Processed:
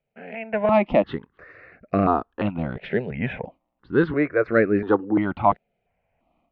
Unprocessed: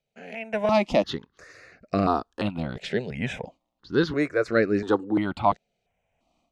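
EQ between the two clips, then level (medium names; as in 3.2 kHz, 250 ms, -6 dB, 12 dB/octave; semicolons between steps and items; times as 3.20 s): low-pass 2.5 kHz 24 dB/octave; +3.0 dB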